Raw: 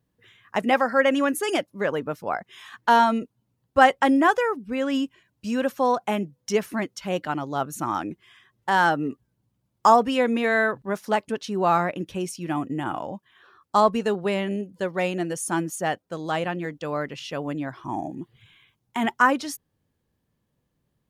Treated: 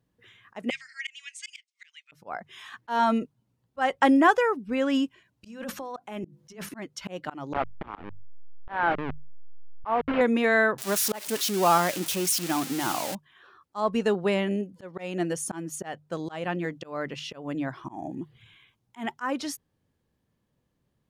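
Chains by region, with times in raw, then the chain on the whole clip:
0.70–2.12 s: Chebyshev band-pass 2.1–8.4 kHz, order 4 + transformer saturation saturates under 3.1 kHz
5.46–6.69 s: compressor with a negative ratio -32 dBFS + hum notches 50/100/150/200/250/300/350 Hz
7.53–10.21 s: send-on-delta sampling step -20.5 dBFS + low-pass 2.6 kHz 24 dB/octave + bass shelf 180 Hz -7 dB
10.78–13.15 s: zero-crossing glitches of -17 dBFS + peaking EQ 66 Hz -6.5 dB 2.1 oct
whole clip: treble shelf 11 kHz -7 dB; hum notches 50/100/150 Hz; slow attack 245 ms

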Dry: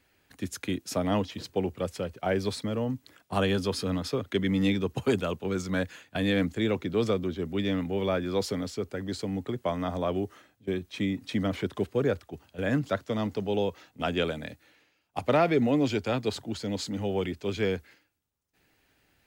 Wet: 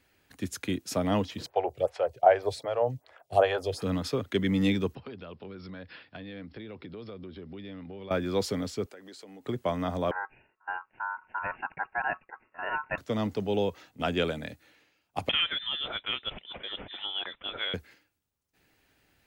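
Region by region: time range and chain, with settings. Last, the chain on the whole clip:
1.46–3.82 s: FFT filter 140 Hz 0 dB, 200 Hz -20 dB, 380 Hz 0 dB, 690 Hz +14 dB, 1.1 kHz +4 dB, 11 kHz -5 dB + lamp-driven phase shifter 2.6 Hz
4.95–8.11 s: brick-wall FIR low-pass 5.5 kHz + compression, threshold -40 dBFS
8.86–9.45 s: high-pass 380 Hz + compression 4:1, threshold -46 dBFS
10.11–12.98 s: Chebyshev low-pass 1.6 kHz, order 8 + bass shelf 170 Hz -8 dB + ring modulator 1.2 kHz
15.29–17.74 s: high-pass 650 Hz + frequency inversion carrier 3.8 kHz + three bands compressed up and down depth 40%
whole clip: none

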